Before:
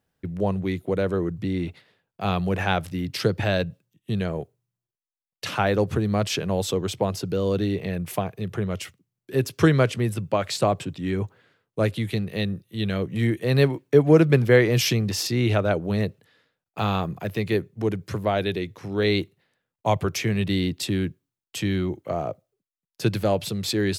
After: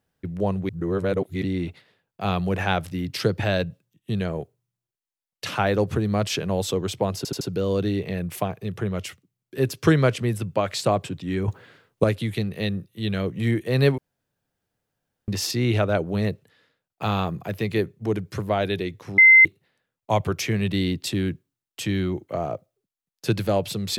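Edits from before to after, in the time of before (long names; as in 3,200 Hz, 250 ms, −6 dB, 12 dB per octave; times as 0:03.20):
0:00.69–0:01.42: reverse
0:07.17: stutter 0.08 s, 4 plays
0:11.24–0:11.80: clip gain +9.5 dB
0:13.74–0:15.04: fill with room tone
0:18.94–0:19.21: beep over 2,070 Hz −8 dBFS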